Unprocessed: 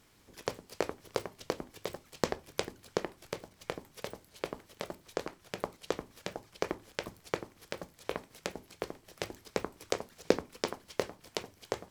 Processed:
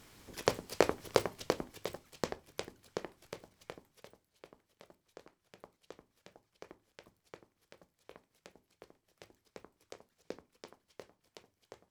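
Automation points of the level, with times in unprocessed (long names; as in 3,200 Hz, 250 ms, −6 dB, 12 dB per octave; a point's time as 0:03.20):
0:01.17 +5.5 dB
0:02.41 −7 dB
0:03.54 −7 dB
0:04.29 −18.5 dB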